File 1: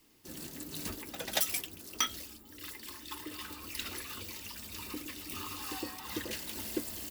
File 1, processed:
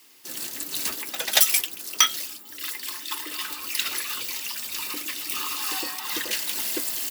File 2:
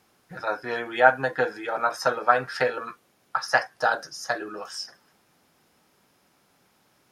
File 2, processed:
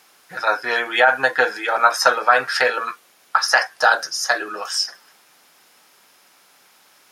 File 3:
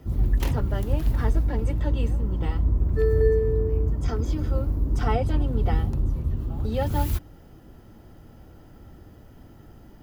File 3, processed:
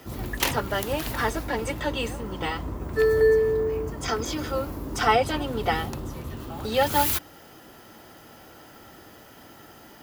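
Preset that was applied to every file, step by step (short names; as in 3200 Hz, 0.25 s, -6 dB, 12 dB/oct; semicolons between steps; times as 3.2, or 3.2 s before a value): HPF 1300 Hz 6 dB/oct; maximiser +14.5 dB; gain -1 dB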